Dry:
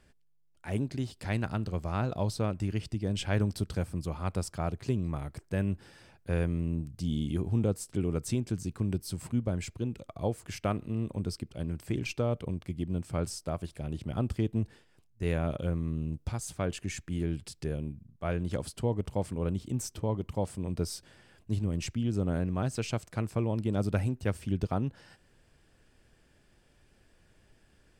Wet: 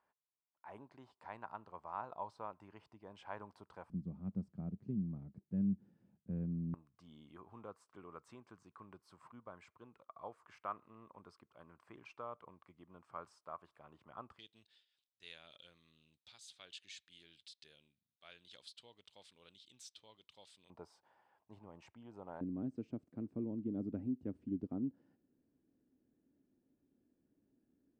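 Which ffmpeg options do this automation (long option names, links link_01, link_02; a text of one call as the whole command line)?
ffmpeg -i in.wav -af "asetnsamples=nb_out_samples=441:pad=0,asendcmd='3.9 bandpass f 200;6.74 bandpass f 1100;14.39 bandpass f 3700;20.7 bandpass f 890;22.41 bandpass f 270',bandpass=frequency=970:width_type=q:width=4.8:csg=0" out.wav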